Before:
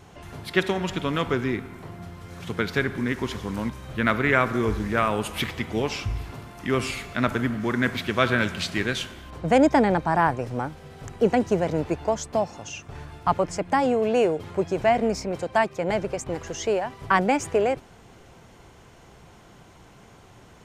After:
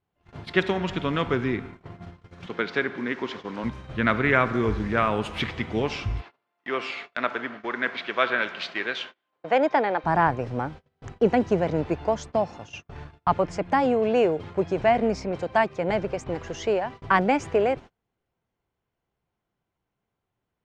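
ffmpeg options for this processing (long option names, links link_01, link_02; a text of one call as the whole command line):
ffmpeg -i in.wav -filter_complex "[0:a]asettb=1/sr,asplit=3[link_01][link_02][link_03];[link_01]atrim=end=2.464[link_04];[link_02]atrim=start=2.46:end=3.64,asetpts=PTS-STARTPTS,afade=type=in:duration=0.004:curve=qsin,afade=type=out:start_time=1.176:duration=0.004:curve=qsin,highpass=270,lowpass=6000[link_05];[link_03]atrim=start=3.636[link_06];[link_04][link_05]acrossfade=duration=0.004:curve1=hsin:curve2=qsin[link_07];[link_07][link_06]acrossfade=duration=0.004:curve1=qsin:curve2=hsin,asplit=3[link_08][link_09][link_10];[link_08]afade=type=out:start_time=6.2:duration=0.02[link_11];[link_09]highpass=480,lowpass=4600,afade=type=in:start_time=6.2:duration=0.02,afade=type=out:start_time=10.03:duration=0.02[link_12];[link_10]afade=type=in:start_time=10.03:duration=0.02[link_13];[link_11][link_12][link_13]amix=inputs=3:normalize=0,lowpass=4300,agate=range=-32dB:threshold=-38dB:ratio=16:detection=peak" out.wav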